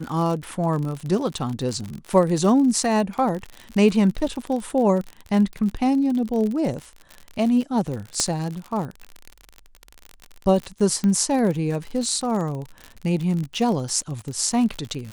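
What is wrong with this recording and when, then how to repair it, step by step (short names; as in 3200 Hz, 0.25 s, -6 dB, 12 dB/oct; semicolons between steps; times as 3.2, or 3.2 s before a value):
crackle 54/s -27 dBFS
8.2 pop -8 dBFS
11.04 pop -13 dBFS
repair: de-click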